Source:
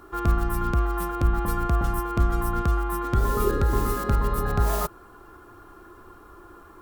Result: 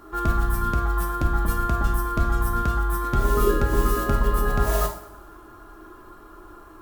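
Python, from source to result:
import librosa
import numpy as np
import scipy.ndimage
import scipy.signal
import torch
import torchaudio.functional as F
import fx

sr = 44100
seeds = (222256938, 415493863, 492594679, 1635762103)

y = x + 0.31 * np.pad(x, (int(3.1 * sr / 1000.0), 0))[:len(x)]
y = fx.rev_double_slope(y, sr, seeds[0], early_s=0.53, late_s=1.6, knee_db=-18, drr_db=2.0)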